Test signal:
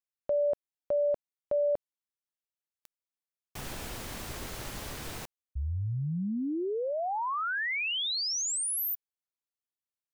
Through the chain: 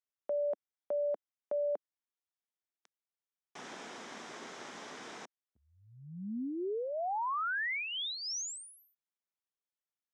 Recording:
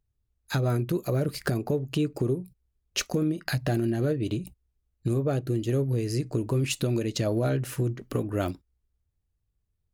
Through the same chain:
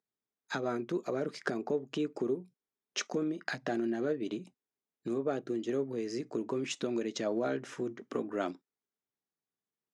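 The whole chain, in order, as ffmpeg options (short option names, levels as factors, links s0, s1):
-af "highpass=f=230:w=0.5412,highpass=f=230:w=1.3066,equalizer=f=310:t=q:w=4:g=-4,equalizer=f=550:t=q:w=4:g=-4,equalizer=f=2700:t=q:w=4:g=-6,equalizer=f=4400:t=q:w=4:g=-9,lowpass=f=6200:w=0.5412,lowpass=f=6200:w=1.3066,volume=0.794"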